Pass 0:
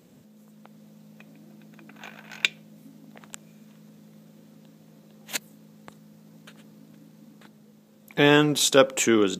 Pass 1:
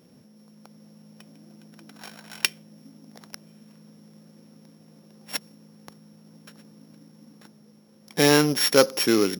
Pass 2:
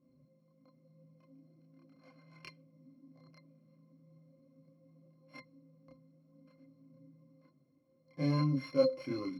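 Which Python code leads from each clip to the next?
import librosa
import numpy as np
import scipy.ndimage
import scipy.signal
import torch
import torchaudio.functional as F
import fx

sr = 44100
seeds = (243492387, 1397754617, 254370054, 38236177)

y1 = np.r_[np.sort(x[:len(x) // 8 * 8].reshape(-1, 8), axis=1).ravel(), x[len(x) // 8 * 8:]]
y2 = fx.octave_resonator(y1, sr, note='C', decay_s=0.11)
y2 = fx.chorus_voices(y2, sr, voices=4, hz=0.37, base_ms=29, depth_ms=4.0, mix_pct=55)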